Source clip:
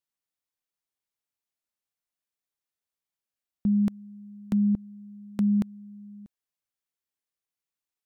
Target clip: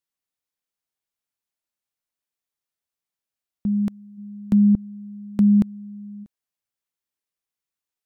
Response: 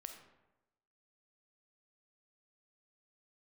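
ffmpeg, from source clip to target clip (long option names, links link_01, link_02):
-filter_complex "[0:a]asplit=3[link_01][link_02][link_03];[link_01]afade=type=out:start_time=4.17:duration=0.02[link_04];[link_02]lowshelf=frequency=470:gain=8,afade=type=in:start_time=4.17:duration=0.02,afade=type=out:start_time=6.23:duration=0.02[link_05];[link_03]afade=type=in:start_time=6.23:duration=0.02[link_06];[link_04][link_05][link_06]amix=inputs=3:normalize=0,volume=1dB"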